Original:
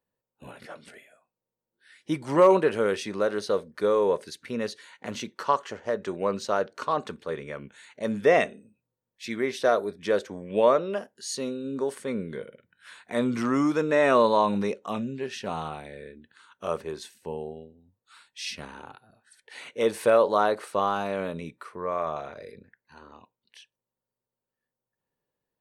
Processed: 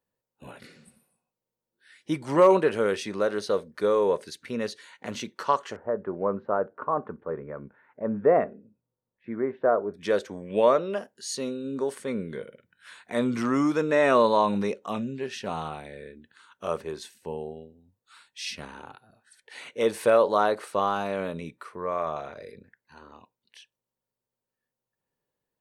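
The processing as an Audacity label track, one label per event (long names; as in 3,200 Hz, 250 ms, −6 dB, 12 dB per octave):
0.680000	1.250000	healed spectral selection 250–7,900 Hz
5.760000	9.940000	low-pass filter 1,400 Hz 24 dB per octave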